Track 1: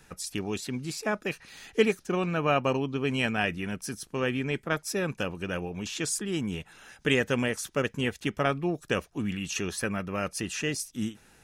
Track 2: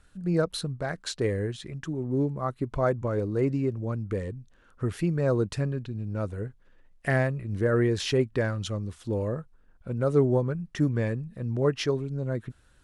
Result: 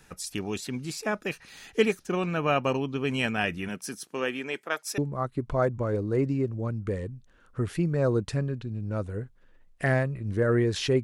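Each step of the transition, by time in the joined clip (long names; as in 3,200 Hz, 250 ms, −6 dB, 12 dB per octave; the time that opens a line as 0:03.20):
track 1
0:03.68–0:04.98: high-pass filter 140 Hz → 660 Hz
0:04.98: continue with track 2 from 0:02.22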